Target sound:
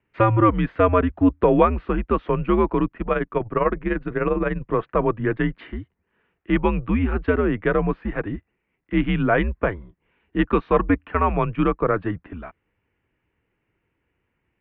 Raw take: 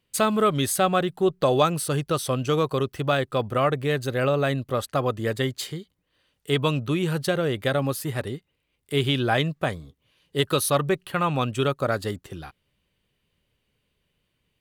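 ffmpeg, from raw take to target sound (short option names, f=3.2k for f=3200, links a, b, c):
-filter_complex "[0:a]equalizer=f=130:w=1.3:g=7,highpass=f=190:t=q:w=0.5412,highpass=f=190:t=q:w=1.307,lowpass=f=2.4k:t=q:w=0.5176,lowpass=f=2.4k:t=q:w=0.7071,lowpass=f=2.4k:t=q:w=1.932,afreqshift=-99,asettb=1/sr,asplit=3[a][b][c];[a]atrim=end=2.874[d];[b]atrim=start=2.87:end=4.62,asetpts=PTS-STARTPTS,afade=t=in:d=0.004:c=qsin,afade=t=out:st=1.746:d=0.004:c=qsin,tremolo=f=20:d=0.667[e];[c]atrim=start=4.616[f];[d][e]acrossfade=d=0.004:c1=hsin:c2=qsin[g];[g][f]acrossfade=d=0.004:c1=qsin:c2=hsin,volume=4dB"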